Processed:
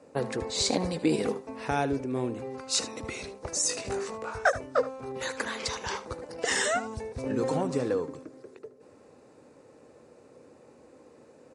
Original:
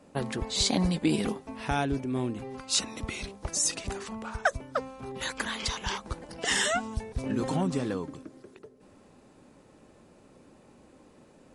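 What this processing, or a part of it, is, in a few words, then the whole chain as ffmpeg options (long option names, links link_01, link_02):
car door speaker: -filter_complex "[0:a]asettb=1/sr,asplit=3[link_01][link_02][link_03];[link_01]atrim=end=3.674[link_04];[link_02]atrim=start=3.67:end=4.82,asetpts=PTS-STARTPTS,afade=type=in:duration=0.004:curve=qsin,afade=type=out:start_time=1.146:duration=0.004:curve=qsin,asplit=2[link_05][link_06];[link_06]adelay=20,volume=-3dB[link_07];[link_05][link_07]amix=inputs=2:normalize=0,atrim=end_sample=50715[link_08];[link_03]atrim=start=4.816[link_09];[link_04][link_08]acrossfade=duration=0.004:curve1=hsin:curve2=qsin[link_10];[link_10][link_09]acrossfade=duration=0.004:curve1=qsin:curve2=hsin,highpass=97,equalizer=frequency=190:width_type=q:width=4:gain=-8,equalizer=frequency=480:width_type=q:width=4:gain=9,equalizer=frequency=3200:width_type=q:width=4:gain=-8,lowpass=frequency=9500:width=0.5412,lowpass=frequency=9500:width=1.3066,aecho=1:1:76:0.178"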